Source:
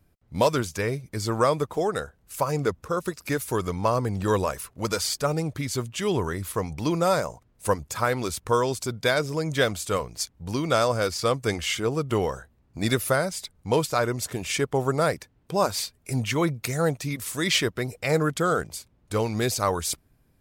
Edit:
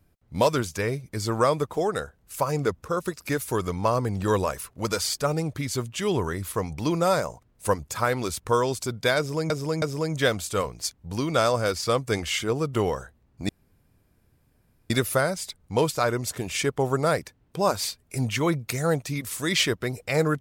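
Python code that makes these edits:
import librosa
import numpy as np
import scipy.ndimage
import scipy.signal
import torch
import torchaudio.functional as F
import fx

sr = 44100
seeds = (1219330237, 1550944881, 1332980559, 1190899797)

y = fx.edit(x, sr, fx.repeat(start_s=9.18, length_s=0.32, count=3),
    fx.insert_room_tone(at_s=12.85, length_s=1.41), tone=tone)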